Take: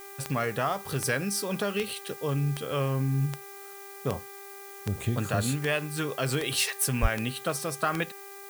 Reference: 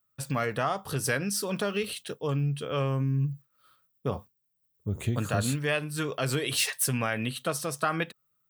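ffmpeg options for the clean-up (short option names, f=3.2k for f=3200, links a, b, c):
-filter_complex "[0:a]adeclick=t=4,bandreject=f=396.8:t=h:w=4,bandreject=f=793.6:t=h:w=4,bandreject=f=1.1904k:t=h:w=4,bandreject=f=1.5872k:t=h:w=4,bandreject=f=1.984k:t=h:w=4,bandreject=f=2.3808k:t=h:w=4,asplit=3[a][b][c];[a]afade=t=out:st=7.01:d=0.02[d];[b]highpass=f=140:w=0.5412,highpass=f=140:w=1.3066,afade=t=in:st=7.01:d=0.02,afade=t=out:st=7.13:d=0.02[e];[c]afade=t=in:st=7.13:d=0.02[f];[d][e][f]amix=inputs=3:normalize=0,afftdn=nr=29:nf=-44"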